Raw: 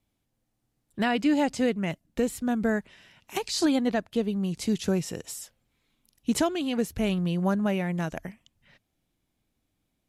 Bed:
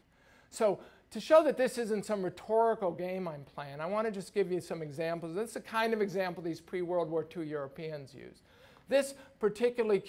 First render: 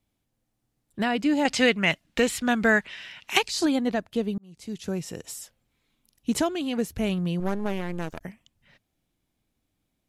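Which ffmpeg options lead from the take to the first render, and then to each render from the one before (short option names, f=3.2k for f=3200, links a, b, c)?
-filter_complex "[0:a]asettb=1/sr,asplit=3[a][b][c];[a]atrim=end=1.454[d];[b]atrim=start=1.45:end=3.43,asetpts=PTS-STARTPTS,afade=t=in:d=0.004:c=qsin,afade=t=out:st=1.976:d=0.004:c=qsin,equalizer=f=2.6k:w=0.37:g=15[e];[c]atrim=start=3.426[f];[d][e]acrossfade=d=0.004:c1=hsin:c2=qsin[g];[g][f]acrossfade=d=0.004:c1=qsin:c2=hsin,asettb=1/sr,asplit=3[h][i][j];[h]atrim=end=7.404[k];[i]atrim=start=7.4:end=8.21,asetpts=PTS-STARTPTS,afade=t=in:d=0.004:c=qsin,afade=t=out:st=0.806:d=0.004:c=qsin,aeval=exprs='max(val(0),0)':c=same[l];[j]atrim=start=8.206[m];[k][l]acrossfade=d=0.004:c1=hsin:c2=qsin[n];[n][m]acrossfade=d=0.004:c1=qsin:c2=hsin,asplit=2[o][p];[o]atrim=end=4.38,asetpts=PTS-STARTPTS,afade=t=out:st=4.376:d=0.004:c=hsin[q];[p]atrim=start=4.38,asetpts=PTS-STARTPTS,afade=t=in:d=0.9[r];[q][r]concat=n=2:v=0:a=1"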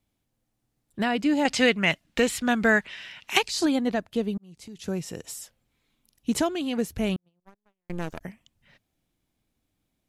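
-filter_complex "[0:a]asettb=1/sr,asplit=3[a][b][c];[a]atrim=end=4.374[d];[b]atrim=start=4.37:end=4.78,asetpts=PTS-STARTPTS,afade=t=in:d=0.004:c=qsin,afade=t=out:st=0.406:d=0.004:c=qsin,acompressor=threshold=-38dB:ratio=10:attack=3.2:release=140:knee=1:detection=peak[e];[c]atrim=start=4.776[f];[d][e]acrossfade=d=0.004:c1=hsin:c2=qsin[g];[g][f]acrossfade=d=0.004:c1=qsin:c2=hsin,asettb=1/sr,asplit=3[h][i][j];[h]atrim=end=7.164[k];[i]atrim=start=7.16:end=7.9,asetpts=PTS-STARTPTS,afade=t=in:d=0.004:c=qsin,afade=t=out:st=0.736:d=0.004:c=qsin,agate=range=-57dB:threshold=-22dB:ratio=16:release=100:detection=peak[l];[j]atrim=start=7.896[m];[k][l]acrossfade=d=0.004:c1=hsin:c2=qsin[n];[n][m]acrossfade=d=0.004:c1=qsin:c2=hsin"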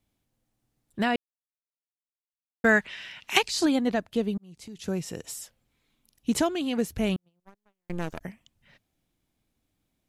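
-filter_complex "[0:a]asplit=3[a][b][c];[a]atrim=end=1.16,asetpts=PTS-STARTPTS,afade=t=out:st=1.156:d=0.004:c=hsin[d];[b]atrim=start=1.16:end=2.64,asetpts=PTS-STARTPTS,volume=0[e];[c]atrim=start=2.64,asetpts=PTS-STARTPTS,afade=t=in:d=0.004:c=hsin[f];[d][e][f]concat=n=3:v=0:a=1"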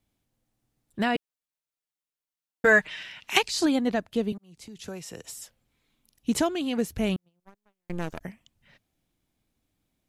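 -filter_complex "[0:a]asettb=1/sr,asplit=3[a][b][c];[a]atrim=end=1.154[d];[b]atrim=start=1.15:end=3.03,asetpts=PTS-STARTPTS,afade=t=in:d=0.004:c=qsin,afade=t=out:st=1.876:d=0.004:c=qsin,aecho=1:1:6.5:0.73,atrim=end_sample=82908[e];[c]atrim=start=3.026[f];[d][e]acrossfade=d=0.004:c1=hsin:c2=qsin[g];[g][f]acrossfade=d=0.004:c1=qsin:c2=hsin,asettb=1/sr,asplit=3[h][i][j];[h]atrim=end=4.324[k];[i]atrim=start=4.32:end=5.42,asetpts=PTS-STARTPTS,afade=t=in:d=0.004:c=qsin,afade=t=out:st=1.096:d=0.004:c=qsin,acrossover=split=230|460[l][m][n];[l]acompressor=threshold=-45dB:ratio=4[o];[m]acompressor=threshold=-48dB:ratio=4[p];[n]acompressor=threshold=-38dB:ratio=4[q];[o][p][q]amix=inputs=3:normalize=0[r];[j]atrim=start=5.416[s];[k][r]acrossfade=d=0.004:c1=hsin:c2=qsin[t];[t][s]acrossfade=d=0.004:c1=qsin:c2=hsin"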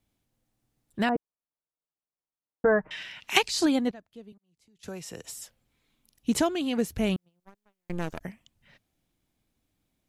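-filter_complex "[0:a]asettb=1/sr,asplit=3[a][b][c];[a]atrim=end=1.094[d];[b]atrim=start=1.09:end=2.91,asetpts=PTS-STARTPTS,afade=t=in:d=0.004:c=qsin,afade=t=out:st=1.816:d=0.004:c=qsin,lowpass=f=1.2k:w=0.5412,lowpass=f=1.2k:w=1.3066[e];[c]atrim=start=2.906[f];[d][e]acrossfade=d=0.004:c1=hsin:c2=qsin[g];[g][f]acrossfade=d=0.004:c1=qsin:c2=hsin,asplit=3[h][i][j];[h]atrim=end=3.91,asetpts=PTS-STARTPTS,afade=t=out:st=3.61:d=0.3:c=log:silence=0.105925[k];[i]atrim=start=3.91:end=4.83,asetpts=PTS-STARTPTS,volume=-19.5dB[l];[j]atrim=start=4.83,asetpts=PTS-STARTPTS,afade=t=in:d=0.3:c=log:silence=0.105925[m];[k][l][m]concat=n=3:v=0:a=1"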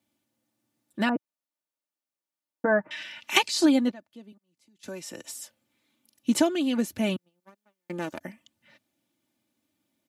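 -af "highpass=f=120:w=0.5412,highpass=f=120:w=1.3066,aecho=1:1:3.4:0.6"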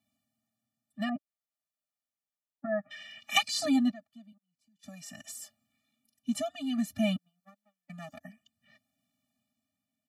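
-af "tremolo=f=0.55:d=0.56,afftfilt=real='re*eq(mod(floor(b*sr/1024/280),2),0)':imag='im*eq(mod(floor(b*sr/1024/280),2),0)':win_size=1024:overlap=0.75"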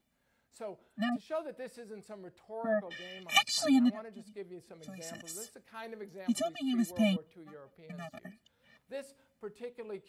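-filter_complex "[1:a]volume=-14dB[a];[0:a][a]amix=inputs=2:normalize=0"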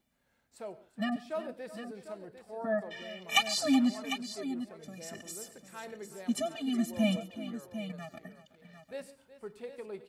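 -af "aecho=1:1:96|139|370|750:0.112|0.1|0.168|0.282"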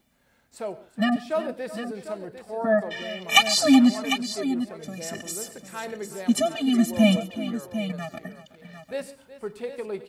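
-af "volume=10dB,alimiter=limit=-2dB:level=0:latency=1"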